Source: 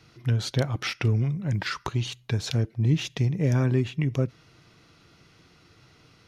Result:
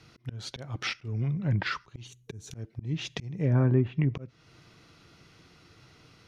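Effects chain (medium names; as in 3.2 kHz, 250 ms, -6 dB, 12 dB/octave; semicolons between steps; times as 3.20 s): time-frequency box 2.07–2.54 s, 470–5600 Hz -12 dB; slow attack 364 ms; low-pass that closes with the level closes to 1.4 kHz, closed at -20.5 dBFS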